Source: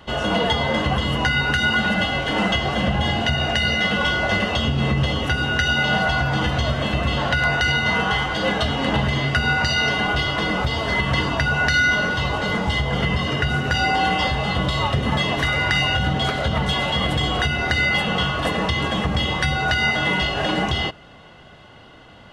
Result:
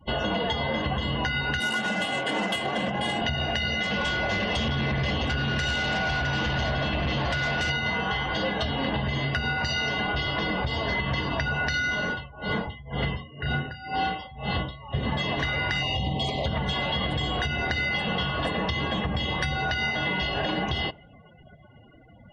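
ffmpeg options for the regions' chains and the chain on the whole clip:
ffmpeg -i in.wav -filter_complex "[0:a]asettb=1/sr,asplit=3[link_01][link_02][link_03];[link_01]atrim=end=1.604[link_04];[link_02]atrim=start=1.6:end=3.22,asetpts=PTS-STARTPTS,afade=type=in:duration=0.004:curve=qsin,afade=type=out:start_time=1.616:duration=0.004:curve=qsin,highpass=200,adynamicsmooth=sensitivity=4.5:basefreq=590[link_05];[link_03]atrim=start=3.216[link_06];[link_04][link_05]acrossfade=duration=0.004:curve1=hsin:curve2=qsin[link_07];[link_07][link_06]acrossfade=duration=0.004:curve1=qsin:curve2=hsin,asettb=1/sr,asplit=3[link_08][link_09][link_10];[link_08]atrim=end=3.834[link_11];[link_09]atrim=start=3.83:end=7.7,asetpts=PTS-STARTPTS,afade=type=in:duration=0.004:curve=qsin,afade=type=out:start_time=3.866:duration=0.004:curve=qsin,aecho=1:1:660:0.501,atrim=end_sample=170667,volume=19.5dB,asoftclip=hard,volume=-19.5dB[link_12];[link_10]atrim=start=7.696[link_13];[link_11][link_12]acrossfade=duration=0.004:curve1=hsin:curve2=qsin[link_14];[link_14][link_13]acrossfade=duration=0.004:curve1=qsin:curve2=hsin,asettb=1/sr,asplit=3[link_15][link_16][link_17];[link_15]atrim=end=12.064[link_18];[link_16]atrim=start=12.06:end=14.95,asetpts=PTS-STARTPTS,afade=type=in:duration=0.004:curve=qsin,afade=type=out:start_time=2.886:duration=0.004:curve=qsin,asplit=2[link_19][link_20];[link_20]adelay=35,volume=-7.5dB[link_21];[link_19][link_21]amix=inputs=2:normalize=0,atrim=end_sample=127449,aeval=exprs='val(0)*pow(10,-22*(0.5-0.5*cos(2*PI*2*n/s))/20)':channel_layout=same[link_22];[link_17]atrim=start=14.946[link_23];[link_18][link_22]acrossfade=duration=0.004:curve1=hsin:curve2=qsin[link_24];[link_24][link_23]acrossfade=duration=0.004:curve1=qsin:curve2=hsin,asettb=1/sr,asplit=3[link_25][link_26][link_27];[link_25]atrim=end=15.834[link_28];[link_26]atrim=start=15.83:end=16.46,asetpts=PTS-STARTPTS,afade=type=in:duration=0.004:curve=qsin,afade=type=out:start_time=0.626:duration=0.004:curve=qsin,asuperstop=centerf=1500:order=4:qfactor=1.4,highshelf=frequency=8100:gain=8.5[link_29];[link_27]atrim=start=16.456[link_30];[link_28][link_29]acrossfade=duration=0.004:curve1=hsin:curve2=qsin[link_31];[link_31][link_30]acrossfade=duration=0.004:curve1=qsin:curve2=hsin,bandreject=frequency=1300:width=7.9,afftdn=noise_reduction=35:noise_floor=-39,acompressor=threshold=-24dB:ratio=6" out.wav

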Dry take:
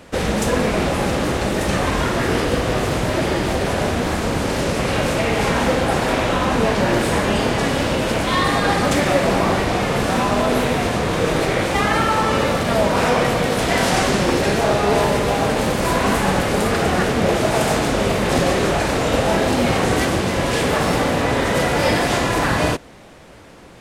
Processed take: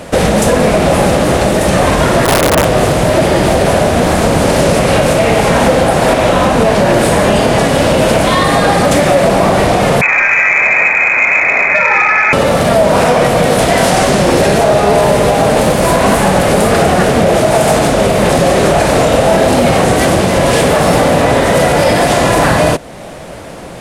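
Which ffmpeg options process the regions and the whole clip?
ffmpeg -i in.wav -filter_complex "[0:a]asettb=1/sr,asplit=3[link_01][link_02][link_03];[link_01]atrim=end=2.254[link_04];[link_02]atrim=start=2.25:end=2.65,asetpts=PTS-STARTPTS,afade=type=in:duration=0.004:curve=qsin,afade=type=out:start_time=0.396:duration=0.004:curve=qsin,lowpass=1500,aeval=exprs='(mod(5.01*val(0)+1,2)-1)/5.01':channel_layout=same[link_05];[link_03]atrim=start=2.646[link_06];[link_04][link_05]acrossfade=duration=0.004:curve1=hsin:curve2=qsin[link_07];[link_07][link_06]acrossfade=duration=0.004:curve1=qsin:curve2=hsin,asettb=1/sr,asplit=3[link_08][link_09][link_10];[link_08]atrim=end=10.014[link_11];[link_09]atrim=start=10.01:end=12.33,asetpts=PTS-STARTPTS,afade=type=in:duration=0.004:curve=qsin,afade=type=out:start_time=2.316:duration=0.004:curve=qsin,lowshelf=frequency=150:gain=7.5,lowpass=frequency=2200:width_type=q:width=0.5098,lowpass=frequency=2200:width_type=q:width=0.6013,lowpass=frequency=2200:width_type=q:width=0.9,lowpass=frequency=2200:width_type=q:width=2.563,afreqshift=-2600[link_12];[link_10]atrim=start=12.326[link_13];[link_11][link_12]acrossfade=duration=0.004:curve1=hsin:curve2=qsin[link_14];[link_14][link_13]acrossfade=duration=0.004:curve1=qsin:curve2=hsin,equalizer=frequency=160:width_type=o:width=0.67:gain=4,equalizer=frequency=630:width_type=o:width=0.67:gain=7,equalizer=frequency=10000:width_type=o:width=0.67:gain=6,acontrast=25,alimiter=limit=-8.5dB:level=0:latency=1:release=336,volume=7dB" out.wav

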